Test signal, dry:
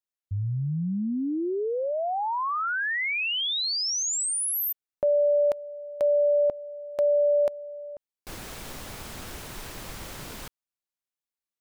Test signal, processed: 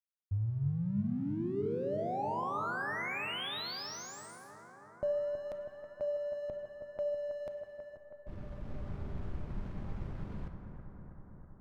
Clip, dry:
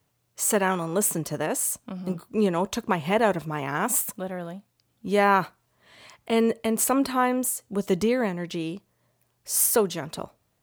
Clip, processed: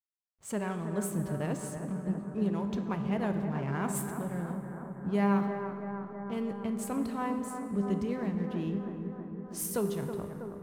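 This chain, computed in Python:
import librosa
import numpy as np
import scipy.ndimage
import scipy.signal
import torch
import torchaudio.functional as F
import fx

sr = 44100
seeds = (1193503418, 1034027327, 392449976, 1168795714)

y = fx.env_lowpass(x, sr, base_hz=1200.0, full_db=-19.5)
y = fx.bass_treble(y, sr, bass_db=13, treble_db=-2)
y = fx.rider(y, sr, range_db=4, speed_s=0.5)
y = fx.comb_fb(y, sr, f0_hz=200.0, decay_s=1.7, harmonics='all', damping=0.4, mix_pct=80)
y = fx.backlash(y, sr, play_db=-51.0)
y = fx.echo_bbd(y, sr, ms=323, stages=4096, feedback_pct=75, wet_db=-8.5)
y = fx.rev_plate(y, sr, seeds[0], rt60_s=2.9, hf_ratio=0.6, predelay_ms=0, drr_db=8.0)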